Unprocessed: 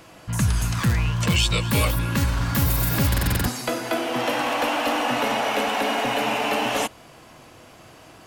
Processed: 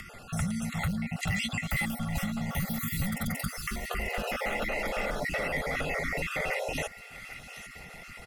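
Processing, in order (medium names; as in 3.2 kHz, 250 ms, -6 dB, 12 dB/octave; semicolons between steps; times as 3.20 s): random holes in the spectrogram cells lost 35%; frequency shift -280 Hz; hard clipper -15 dBFS, distortion -24 dB; feedback echo behind a high-pass 797 ms, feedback 47%, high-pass 2.1 kHz, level -15 dB; upward compressor, threshold -35 dBFS; graphic EQ with 31 bands 250 Hz +4 dB, 2 kHz +10 dB, 10 kHz +3 dB; compression, threshold -22 dBFS, peak gain reduction 6.5 dB; comb 1.5 ms, depth 61%; whistle 1.4 kHz -49 dBFS; trim -7 dB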